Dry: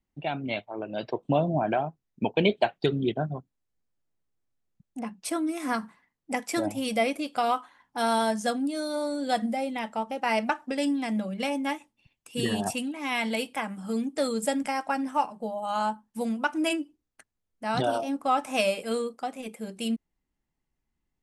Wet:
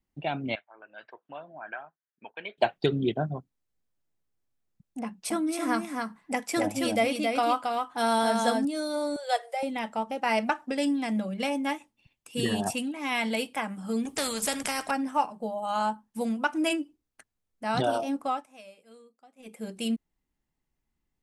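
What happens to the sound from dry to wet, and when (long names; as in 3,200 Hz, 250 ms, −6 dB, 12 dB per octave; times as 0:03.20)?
0:00.55–0:02.58: resonant band-pass 1,600 Hz, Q 3.5
0:05.03–0:08.65: single-tap delay 272 ms −4 dB
0:09.16–0:09.63: Chebyshev high-pass filter 390 Hz, order 8
0:14.05–0:14.91: every bin compressed towards the loudest bin 2 to 1
0:18.18–0:19.65: duck −24 dB, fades 0.29 s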